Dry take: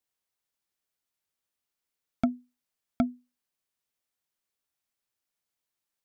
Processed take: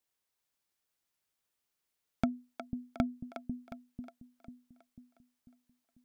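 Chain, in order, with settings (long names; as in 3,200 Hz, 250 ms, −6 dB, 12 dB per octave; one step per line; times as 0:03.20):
downward compressor, threshold −27 dBFS, peak gain reduction 7 dB
on a send: echo with a time of its own for lows and highs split 350 Hz, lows 494 ms, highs 361 ms, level −7.5 dB
on the sum: level +1 dB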